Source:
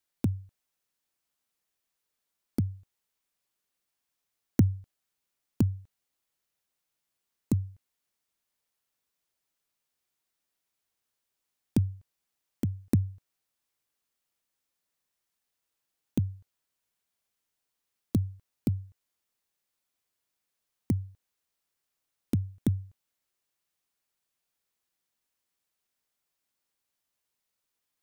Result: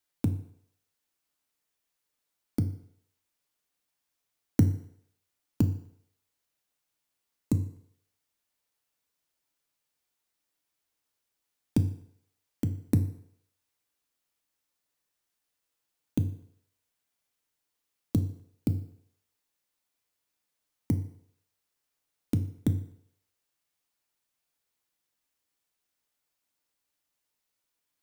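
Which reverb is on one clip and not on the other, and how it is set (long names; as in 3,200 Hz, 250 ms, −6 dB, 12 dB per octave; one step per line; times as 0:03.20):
feedback delay network reverb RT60 0.7 s, low-frequency decay 0.75×, high-frequency decay 0.85×, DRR 7 dB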